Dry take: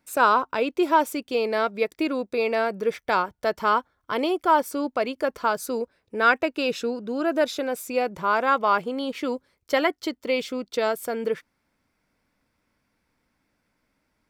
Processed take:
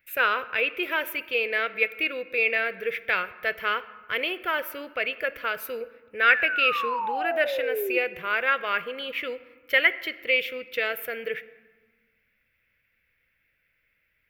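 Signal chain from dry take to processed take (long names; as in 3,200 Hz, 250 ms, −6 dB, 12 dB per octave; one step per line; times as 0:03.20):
drawn EQ curve 110 Hz 0 dB, 270 Hz −15 dB, 500 Hz −1 dB, 930 Hz −15 dB, 1,800 Hz +11 dB, 2,700 Hz +12 dB, 4,400 Hz −7 dB, 8,100 Hz −14 dB, 14,000 Hz +10 dB
sound drawn into the spectrogram fall, 0:06.29–0:07.98, 350–1,900 Hz −26 dBFS
on a send: convolution reverb RT60 1.5 s, pre-delay 4 ms, DRR 14 dB
on the sum: level −2.5 dB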